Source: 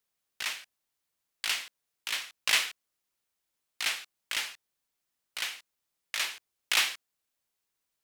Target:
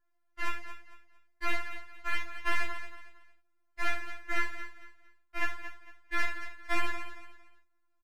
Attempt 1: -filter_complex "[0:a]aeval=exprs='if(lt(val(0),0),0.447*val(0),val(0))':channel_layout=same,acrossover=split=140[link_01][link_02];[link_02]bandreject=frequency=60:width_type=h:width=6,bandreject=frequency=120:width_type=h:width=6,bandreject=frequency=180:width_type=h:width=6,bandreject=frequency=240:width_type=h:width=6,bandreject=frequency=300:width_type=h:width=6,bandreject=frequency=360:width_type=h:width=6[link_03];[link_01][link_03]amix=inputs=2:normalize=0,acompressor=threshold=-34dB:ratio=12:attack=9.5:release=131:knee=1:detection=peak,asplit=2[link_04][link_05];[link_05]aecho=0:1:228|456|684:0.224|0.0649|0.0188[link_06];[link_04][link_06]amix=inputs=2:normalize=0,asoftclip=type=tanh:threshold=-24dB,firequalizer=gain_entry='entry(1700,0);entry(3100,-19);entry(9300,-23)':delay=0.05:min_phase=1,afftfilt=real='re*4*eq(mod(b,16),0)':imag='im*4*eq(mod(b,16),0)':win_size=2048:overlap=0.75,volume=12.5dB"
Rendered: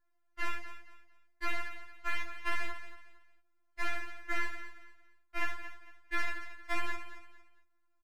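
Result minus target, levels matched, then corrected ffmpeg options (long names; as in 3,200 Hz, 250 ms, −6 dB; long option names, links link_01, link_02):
downward compressor: peak gain reduction +6 dB
-filter_complex "[0:a]aeval=exprs='if(lt(val(0),0),0.447*val(0),val(0))':channel_layout=same,acrossover=split=140[link_01][link_02];[link_02]bandreject=frequency=60:width_type=h:width=6,bandreject=frequency=120:width_type=h:width=6,bandreject=frequency=180:width_type=h:width=6,bandreject=frequency=240:width_type=h:width=6,bandreject=frequency=300:width_type=h:width=6,bandreject=frequency=360:width_type=h:width=6[link_03];[link_01][link_03]amix=inputs=2:normalize=0,acompressor=threshold=-27.5dB:ratio=12:attack=9.5:release=131:knee=1:detection=peak,asplit=2[link_04][link_05];[link_05]aecho=0:1:228|456|684:0.224|0.0649|0.0188[link_06];[link_04][link_06]amix=inputs=2:normalize=0,asoftclip=type=tanh:threshold=-24dB,firequalizer=gain_entry='entry(1700,0);entry(3100,-19);entry(9300,-23)':delay=0.05:min_phase=1,afftfilt=real='re*4*eq(mod(b,16),0)':imag='im*4*eq(mod(b,16),0)':win_size=2048:overlap=0.75,volume=12.5dB"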